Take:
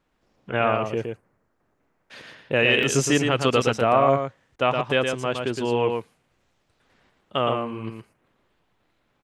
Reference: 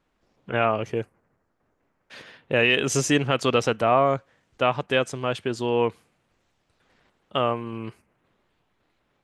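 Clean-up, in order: interpolate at 1.71/2.83/4.49/8.35, 2 ms; interpolate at 4.56, 28 ms; inverse comb 0.116 s -5 dB

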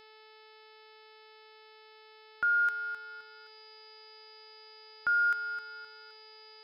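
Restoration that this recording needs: de-hum 434.9 Hz, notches 12; notch 4900 Hz, Q 30; expander -48 dBFS, range -21 dB

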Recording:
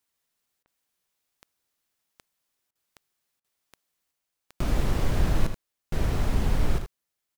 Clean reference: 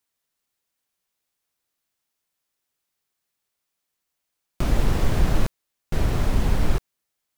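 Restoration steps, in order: de-click; interpolate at 0.63/2.71/3.4, 42 ms; inverse comb 79 ms -8 dB; gain correction +4 dB, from 4.11

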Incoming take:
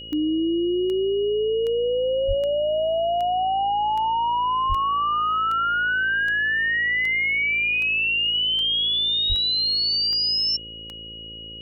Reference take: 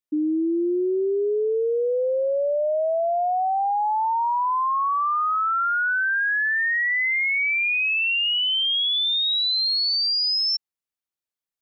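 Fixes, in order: de-click; de-hum 55.4 Hz, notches 10; notch 2900 Hz, Q 30; 2.27–2.39 HPF 140 Hz 24 dB/oct; 4.68–4.8 HPF 140 Hz 24 dB/oct; 9.28–9.4 HPF 140 Hz 24 dB/oct

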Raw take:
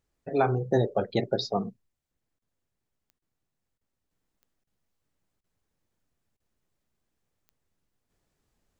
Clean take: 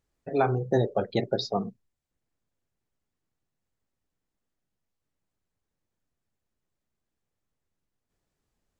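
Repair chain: de-click; interpolate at 2.39/3.19/3.78/4.64/5.41/6.37, 29 ms; gain correction -4 dB, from 4.11

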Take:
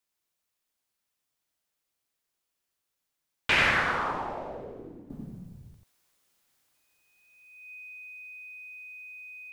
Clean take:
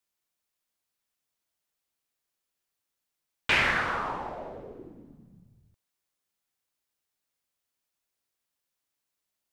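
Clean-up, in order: notch 2500 Hz, Q 30; inverse comb 90 ms -4 dB; gain correction -11 dB, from 5.1

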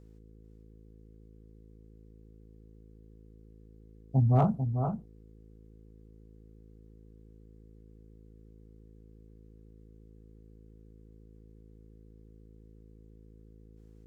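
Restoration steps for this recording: clip repair -15.5 dBFS; de-hum 54.2 Hz, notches 9; inverse comb 0.444 s -7 dB

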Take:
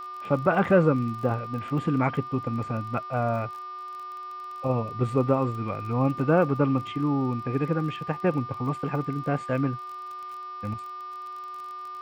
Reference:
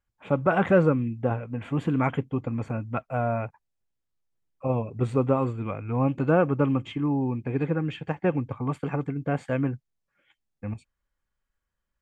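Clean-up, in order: de-click; de-hum 367.9 Hz, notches 15; notch 1200 Hz, Q 30

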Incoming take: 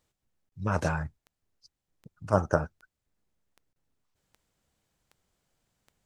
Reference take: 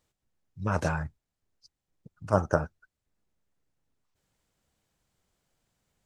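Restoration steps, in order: de-click; interpolate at 0.49/3.73, 31 ms

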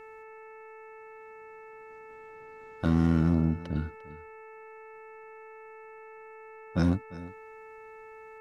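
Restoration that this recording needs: clip repair -16.5 dBFS; de-hum 439.3 Hz, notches 6; inverse comb 0.348 s -18.5 dB

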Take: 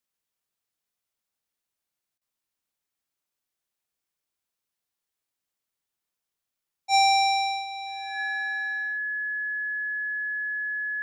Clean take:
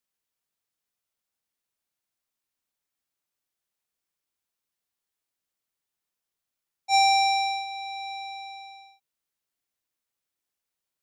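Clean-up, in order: notch 1700 Hz, Q 30; interpolate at 2.18, 32 ms

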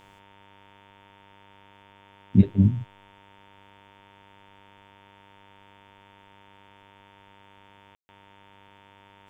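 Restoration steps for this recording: de-hum 99 Hz, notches 36; notch 920 Hz, Q 30; room tone fill 7.95–8.09

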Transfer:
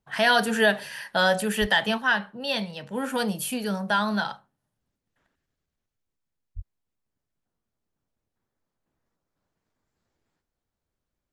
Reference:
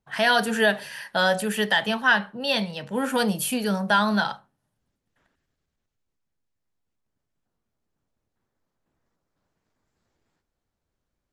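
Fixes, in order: 1.6–1.72 HPF 140 Hz 24 dB/oct; 1.98 gain correction +3.5 dB; 6.55–6.67 HPF 140 Hz 24 dB/oct

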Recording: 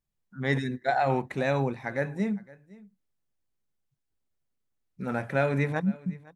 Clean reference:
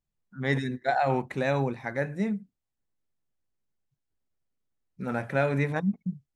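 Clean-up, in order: inverse comb 0.511 s -22 dB

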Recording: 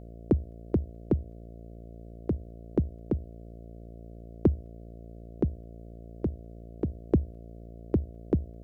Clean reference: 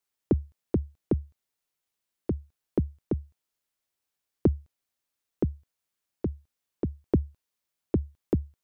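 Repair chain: de-hum 57.1 Hz, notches 12

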